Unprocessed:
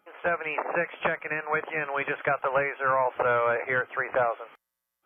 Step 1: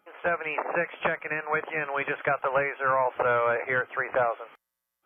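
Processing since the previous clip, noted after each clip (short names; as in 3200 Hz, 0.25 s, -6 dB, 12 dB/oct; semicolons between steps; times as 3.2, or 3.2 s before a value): nothing audible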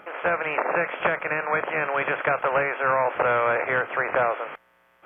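per-bin compression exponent 0.6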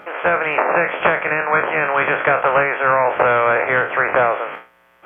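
spectral trails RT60 0.35 s; gain +6 dB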